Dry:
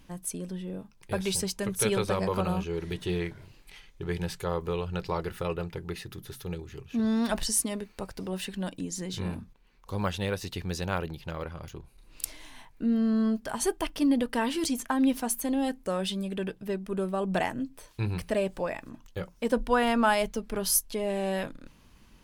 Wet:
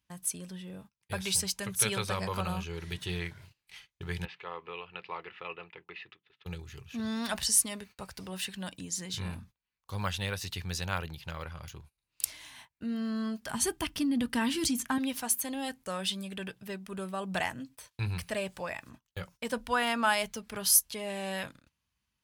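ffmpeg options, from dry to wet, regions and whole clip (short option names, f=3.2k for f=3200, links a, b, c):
-filter_complex "[0:a]asettb=1/sr,asplit=3[a][b][c];[a]atrim=end=4.254[d];[b]atrim=start=4.25:end=6.46,asetpts=PTS-STARTPTS,afade=t=in:d=0.004:c=qsin,afade=t=out:st=2.206:d=0.004:c=qsin,highpass=410,equalizer=f=590:t=q:w=4:g=-7,equalizer=f=850:t=q:w=4:g=-3,equalizer=f=1.5k:t=q:w=4:g=-8,equalizer=f=2.6k:t=q:w=4:g=4,lowpass=f=2.8k:w=0.5412,lowpass=f=2.8k:w=1.3066,acompressor=mode=upward:threshold=-47dB:ratio=2.5:attack=3.2:release=140:knee=2.83:detection=peak[e];[c]atrim=start=6.456[f];[d][e]acrossfade=d=0.004:c1=hsin:c2=qsin[g];[g][f]acrossfade=d=0.004:c1=qsin:c2=hsin,asettb=1/sr,asplit=3[h][i][j];[h]atrim=end=13.504[k];[i]atrim=start=13.5:end=14.98,asetpts=PTS-STARTPTS,afade=t=in:d=0.004:c=qsin,afade=t=out:st=1.476:d=0.004:c=qsin,lowshelf=f=390:t=q:w=1.5:g=8,acompressor=threshold=-16dB:ratio=6:attack=3.2:release=140:knee=1:detection=peak[l];[j]atrim=start=14.976[m];[k][l]acrossfade=d=0.004:c1=hsin:c2=qsin[n];[n][m]acrossfade=d=0.004:c1=qsin:c2=hsin,highpass=f=61:w=0.5412,highpass=f=61:w=1.3066,equalizer=f=340:t=o:w=2.6:g=-13,agate=range=-22dB:threshold=-54dB:ratio=16:detection=peak,volume=2.5dB"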